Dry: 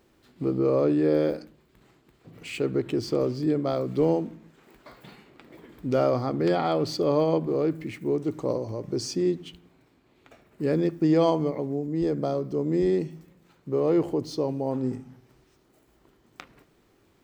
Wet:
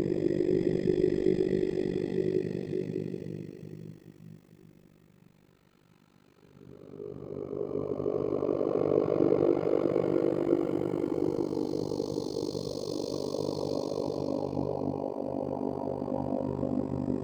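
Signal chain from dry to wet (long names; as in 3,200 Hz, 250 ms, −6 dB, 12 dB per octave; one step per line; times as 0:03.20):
extreme stretch with random phases 8.1×, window 0.50 s, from 0:12.72
amplitude modulation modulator 49 Hz, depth 100%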